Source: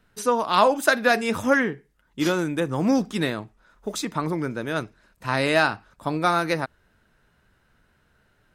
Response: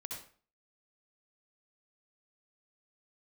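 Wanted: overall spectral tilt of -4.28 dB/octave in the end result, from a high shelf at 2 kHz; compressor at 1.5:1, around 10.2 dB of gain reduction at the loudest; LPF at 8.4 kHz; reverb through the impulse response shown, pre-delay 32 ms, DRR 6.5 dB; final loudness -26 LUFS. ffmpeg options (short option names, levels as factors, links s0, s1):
-filter_complex "[0:a]lowpass=8400,highshelf=f=2000:g=-3.5,acompressor=threshold=0.00708:ratio=1.5,asplit=2[s0][s1];[1:a]atrim=start_sample=2205,adelay=32[s2];[s1][s2]afir=irnorm=-1:irlink=0,volume=0.596[s3];[s0][s3]amix=inputs=2:normalize=0,volume=2.11"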